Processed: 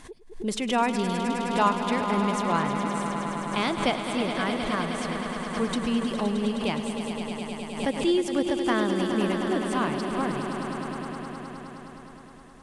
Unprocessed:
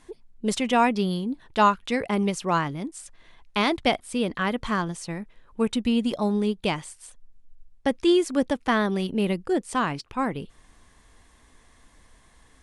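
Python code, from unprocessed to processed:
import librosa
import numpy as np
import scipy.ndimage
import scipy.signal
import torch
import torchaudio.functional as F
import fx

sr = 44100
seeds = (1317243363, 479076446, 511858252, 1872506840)

y = fx.echo_swell(x, sr, ms=104, loudest=5, wet_db=-10)
y = fx.pre_swell(y, sr, db_per_s=100.0)
y = y * librosa.db_to_amplitude(-4.0)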